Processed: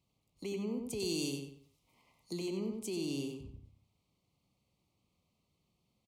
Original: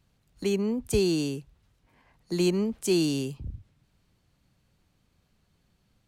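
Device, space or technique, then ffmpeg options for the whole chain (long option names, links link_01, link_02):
PA system with an anti-feedback notch: -filter_complex "[0:a]highpass=frequency=130:poles=1,asuperstop=centerf=1600:order=8:qfactor=2.1,alimiter=limit=-23dB:level=0:latency=1:release=24,asettb=1/sr,asplit=3[link_01][link_02][link_03];[link_01]atrim=end=1.004[link_04];[link_02]atrim=start=1:end=2.33,asetpts=PTS-STARTPTS,afade=type=in:duration=0.004:curve=qsin,afade=type=out:start_time=1.326:duration=0.004:curve=qsin,highshelf=frequency=3000:gain=11[link_05];[link_03]atrim=start=2.326[link_06];[link_04][link_05]acrossfade=duration=0.004:curve1=hsin:curve2=qsin[link_07];[link_07][link_06]acrossfade=duration=0.004:curve1=qsin:curve2=hsin,asplit=2[link_08][link_09];[link_09]adelay=93,lowpass=frequency=3900:poles=1,volume=-4dB,asplit=2[link_10][link_11];[link_11]adelay=93,lowpass=frequency=3900:poles=1,volume=0.34,asplit=2[link_12][link_13];[link_13]adelay=93,lowpass=frequency=3900:poles=1,volume=0.34,asplit=2[link_14][link_15];[link_15]adelay=93,lowpass=frequency=3900:poles=1,volume=0.34[link_16];[link_08][link_10][link_12][link_14][link_16]amix=inputs=5:normalize=0,volume=-8.5dB"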